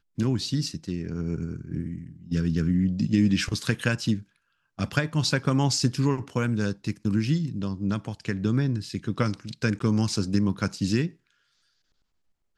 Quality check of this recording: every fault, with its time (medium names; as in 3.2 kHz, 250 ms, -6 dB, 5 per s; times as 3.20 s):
9.79–9.80 s: dropout